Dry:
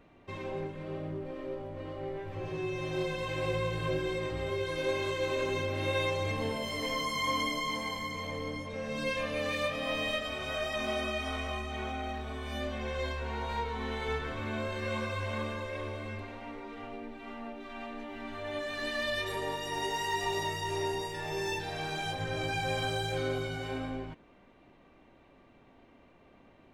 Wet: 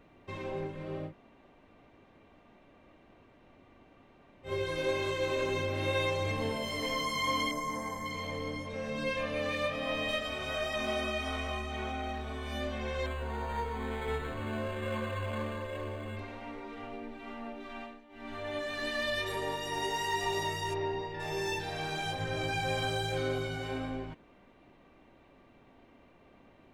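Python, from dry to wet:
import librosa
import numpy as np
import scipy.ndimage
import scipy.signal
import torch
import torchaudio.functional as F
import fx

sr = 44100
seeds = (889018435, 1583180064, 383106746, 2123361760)

y = fx.band_shelf(x, sr, hz=3300.0, db=-14.0, octaves=1.2, at=(7.51, 8.06))
y = fx.high_shelf(y, sr, hz=4900.0, db=-6.5, at=(8.9, 10.09))
y = fx.resample_linear(y, sr, factor=8, at=(13.06, 16.17))
y = fx.air_absorb(y, sr, metres=270.0, at=(20.73, 21.19), fade=0.02)
y = fx.edit(y, sr, fx.room_tone_fill(start_s=1.09, length_s=3.39, crossfade_s=0.1),
    fx.fade_down_up(start_s=17.77, length_s=0.56, db=-15.5, fade_s=0.24), tone=tone)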